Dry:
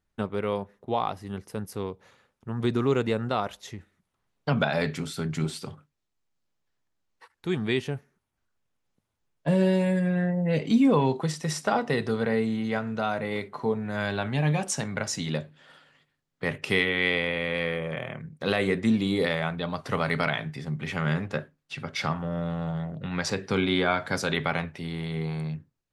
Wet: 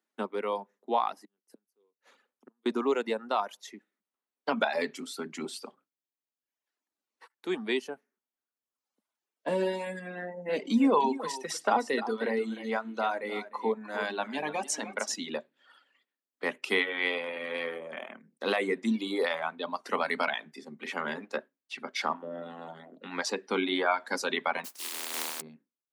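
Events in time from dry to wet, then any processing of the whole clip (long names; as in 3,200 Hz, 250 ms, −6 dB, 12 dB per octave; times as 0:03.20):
0:01.16–0:02.66: gate with flip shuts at −31 dBFS, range −32 dB
0:10.18–0:15.15: single-tap delay 303 ms −10 dB
0:24.64–0:25.40: compressing power law on the bin magnitudes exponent 0.11
whole clip: reverb reduction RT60 1.1 s; Butterworth high-pass 220 Hz 48 dB per octave; dynamic equaliser 950 Hz, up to +6 dB, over −47 dBFS, Q 2.9; level −2 dB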